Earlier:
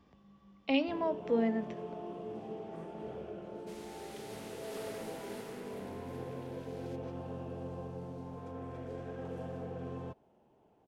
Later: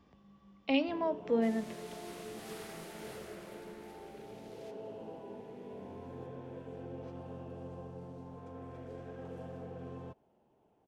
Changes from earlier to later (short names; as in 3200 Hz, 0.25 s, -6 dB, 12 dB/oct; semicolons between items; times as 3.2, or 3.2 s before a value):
first sound -3.5 dB; second sound: entry -2.25 s